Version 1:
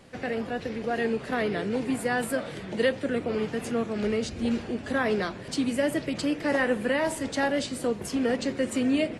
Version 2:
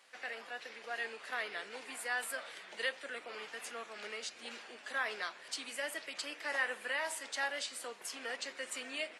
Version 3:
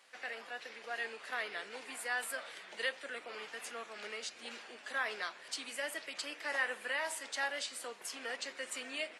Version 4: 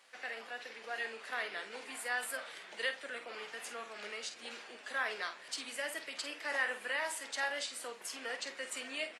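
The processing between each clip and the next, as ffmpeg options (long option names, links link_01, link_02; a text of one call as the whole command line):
ffmpeg -i in.wav -af "highpass=1100,volume=-4.5dB" out.wav
ffmpeg -i in.wav -af anull out.wav
ffmpeg -i in.wav -filter_complex "[0:a]asplit=2[link_01][link_02];[link_02]adelay=49,volume=-10dB[link_03];[link_01][link_03]amix=inputs=2:normalize=0" out.wav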